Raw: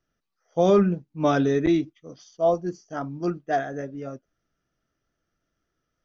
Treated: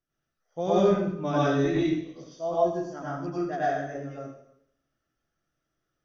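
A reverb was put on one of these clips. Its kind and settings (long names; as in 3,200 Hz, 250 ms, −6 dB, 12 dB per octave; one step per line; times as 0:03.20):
dense smooth reverb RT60 0.73 s, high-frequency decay 0.95×, pre-delay 85 ms, DRR −8.5 dB
level −10.5 dB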